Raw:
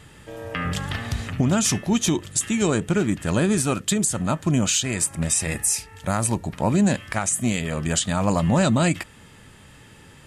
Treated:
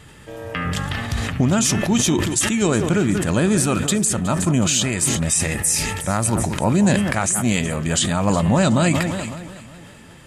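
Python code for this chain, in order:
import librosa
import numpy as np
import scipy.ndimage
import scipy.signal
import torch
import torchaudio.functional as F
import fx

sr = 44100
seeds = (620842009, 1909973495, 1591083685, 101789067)

p1 = x + fx.echo_alternate(x, sr, ms=184, hz=2100.0, feedback_pct=67, wet_db=-13, dry=0)
p2 = fx.sustainer(p1, sr, db_per_s=32.0)
y = p2 * librosa.db_to_amplitude(2.0)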